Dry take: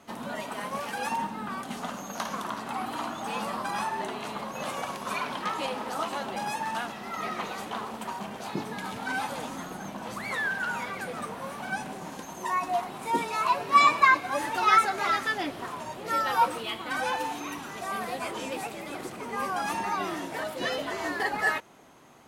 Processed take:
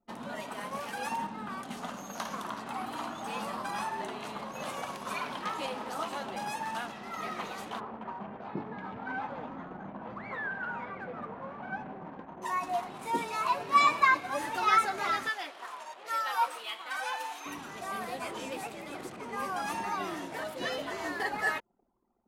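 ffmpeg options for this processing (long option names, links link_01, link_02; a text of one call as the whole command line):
ffmpeg -i in.wav -filter_complex "[0:a]asplit=3[link_01][link_02][link_03];[link_01]afade=type=out:start_time=7.79:duration=0.02[link_04];[link_02]lowpass=1700,afade=type=in:start_time=7.79:duration=0.02,afade=type=out:start_time=12.41:duration=0.02[link_05];[link_03]afade=type=in:start_time=12.41:duration=0.02[link_06];[link_04][link_05][link_06]amix=inputs=3:normalize=0,asettb=1/sr,asplit=3[link_07][link_08][link_09];[link_07]atrim=end=15.294[link_10];[link_08]atrim=start=15.29:end=17.46,asetpts=PTS-STARTPTS,afade=type=in:duration=0.004:curve=qsin,afade=type=out:start_time=2.166:duration=0.004:curve=qsin,highpass=730[link_11];[link_09]atrim=start=17.456[link_12];[link_10][link_11]acrossfade=duration=0.004:curve1=hsin:curve2=qsin[link_13];[link_13][link_12]acrossfade=duration=0.004:curve1=qsin:curve2=hsin,anlmdn=0.0398,volume=-4dB" out.wav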